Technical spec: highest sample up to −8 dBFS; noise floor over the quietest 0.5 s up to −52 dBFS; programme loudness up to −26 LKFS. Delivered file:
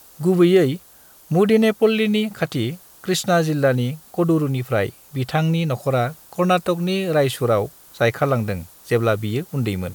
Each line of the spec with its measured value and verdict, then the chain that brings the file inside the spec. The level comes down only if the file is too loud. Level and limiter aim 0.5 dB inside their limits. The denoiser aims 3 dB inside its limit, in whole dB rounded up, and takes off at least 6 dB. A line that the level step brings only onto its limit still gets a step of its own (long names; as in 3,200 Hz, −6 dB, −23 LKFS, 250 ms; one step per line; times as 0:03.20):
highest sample −5.5 dBFS: out of spec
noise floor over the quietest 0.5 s −48 dBFS: out of spec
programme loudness −20.0 LKFS: out of spec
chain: level −6.5 dB